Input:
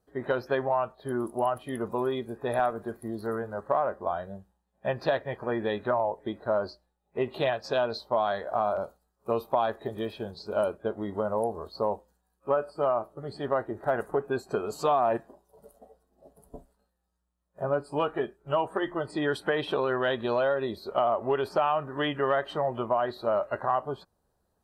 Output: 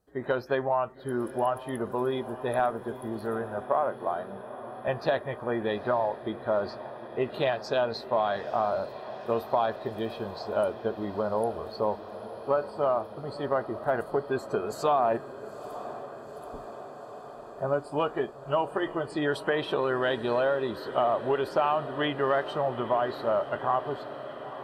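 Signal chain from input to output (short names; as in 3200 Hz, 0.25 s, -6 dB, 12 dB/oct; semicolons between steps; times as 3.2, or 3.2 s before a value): 3.66–4.88 BPF 190–4100 Hz; diffused feedback echo 0.9 s, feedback 75%, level -14.5 dB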